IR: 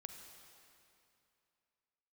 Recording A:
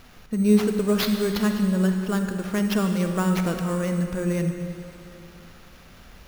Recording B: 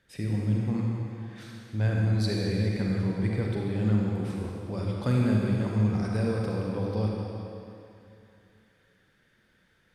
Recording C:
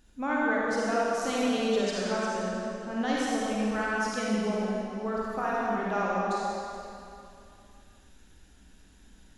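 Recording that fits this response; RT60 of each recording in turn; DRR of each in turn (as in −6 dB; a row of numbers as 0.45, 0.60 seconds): A; 2.7, 2.7, 2.7 seconds; 5.0, −2.5, −6.5 decibels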